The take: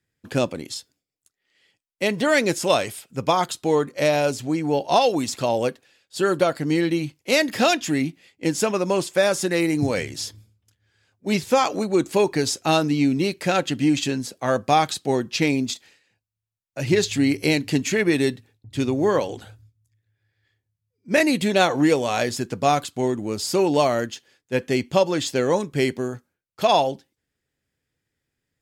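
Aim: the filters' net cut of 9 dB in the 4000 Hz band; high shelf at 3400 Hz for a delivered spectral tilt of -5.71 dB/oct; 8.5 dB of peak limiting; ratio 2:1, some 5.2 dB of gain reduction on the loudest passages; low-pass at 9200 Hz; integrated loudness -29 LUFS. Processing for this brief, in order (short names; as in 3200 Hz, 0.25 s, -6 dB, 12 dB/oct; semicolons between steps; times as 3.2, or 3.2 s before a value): LPF 9200 Hz; high shelf 3400 Hz -4 dB; bell 4000 Hz -8.5 dB; compressor 2:1, threshold -23 dBFS; gain +0.5 dB; limiter -18.5 dBFS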